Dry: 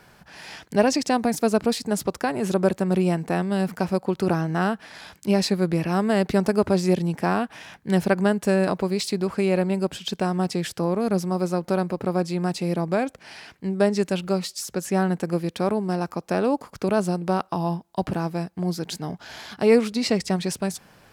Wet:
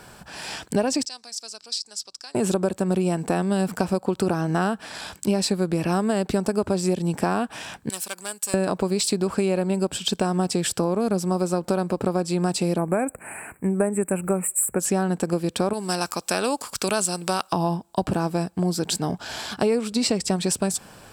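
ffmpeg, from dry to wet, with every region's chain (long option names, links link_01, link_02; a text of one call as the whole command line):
ffmpeg -i in.wav -filter_complex "[0:a]asettb=1/sr,asplit=3[link_01][link_02][link_03];[link_01]atrim=end=1.054[link_04];[link_02]atrim=start=1.05:end=2.35,asetpts=PTS-STARTPTS,afade=type=in:duration=0.004:curve=qsin,afade=type=out:start_time=1.296:duration=0.004:curve=qsin,aeval=exprs='val(0)+0.00631*(sin(2*PI*60*n/s)+sin(2*PI*2*60*n/s)/2+sin(2*PI*3*60*n/s)/3+sin(2*PI*4*60*n/s)/4+sin(2*PI*5*60*n/s)/5)':channel_layout=same,bandpass=frequency=5100:width_type=q:width=4.4[link_05];[link_03]atrim=start=2.346[link_06];[link_04][link_05]acrossfade=duration=0.004:curve1=hsin:curve2=qsin[link_07];[link_07][link_06]acrossfade=duration=0.004:curve1=qsin:curve2=hsin,asettb=1/sr,asplit=3[link_08][link_09][link_10];[link_08]atrim=end=7.894[link_11];[link_09]atrim=start=7.89:end=8.54,asetpts=PTS-STARTPTS,afade=type=in:duration=0.004:curve=qsin,afade=type=out:start_time=0.646:duration=0.004:curve=qsin,aeval=exprs='clip(val(0),-1,0.119)':channel_layout=same,aderivative[link_12];[link_10]atrim=start=8.536[link_13];[link_11][link_12]acrossfade=duration=0.004:curve1=hsin:curve2=qsin[link_14];[link_14][link_13]acrossfade=duration=0.004:curve1=qsin:curve2=hsin,asettb=1/sr,asplit=3[link_15][link_16][link_17];[link_15]atrim=end=12.784[link_18];[link_16]atrim=start=12.78:end=14.8,asetpts=PTS-STARTPTS,afade=type=in:duration=0.004:curve=qsin,afade=type=out:start_time=2.016:duration=0.004:curve=qsin,asuperstop=centerf=4500:order=12:qfactor=0.81,highshelf=frequency=3900:gain=8.5[link_19];[link_17]atrim=start=14.796[link_20];[link_18][link_19]acrossfade=duration=0.004:curve1=hsin:curve2=qsin[link_21];[link_21][link_20]acrossfade=duration=0.004:curve1=qsin:curve2=hsin,asettb=1/sr,asplit=3[link_22][link_23][link_24];[link_22]atrim=end=15.734[link_25];[link_23]atrim=start=15.73:end=17.53,asetpts=PTS-STARTPTS,afade=type=in:duration=0.004:curve=qsin,afade=type=out:start_time=1.796:duration=0.004:curve=qsin,tiltshelf=frequency=1300:gain=-9.5,acompressor=mode=upward:threshold=-39dB:ratio=2.5:attack=3.2:release=140:knee=2.83:detection=peak[link_26];[link_24]atrim=start=17.526[link_27];[link_25][link_26]acrossfade=duration=0.004:curve1=hsin:curve2=qsin[link_28];[link_28][link_27]acrossfade=duration=0.004:curve1=qsin:curve2=hsin,equalizer=frequency=160:width_type=o:width=0.33:gain=-3,equalizer=frequency=2000:width_type=o:width=0.33:gain=-7,equalizer=frequency=8000:width_type=o:width=0.33:gain=10,acompressor=threshold=-26dB:ratio=6,bandreject=frequency=6500:width=21,volume=7dB" out.wav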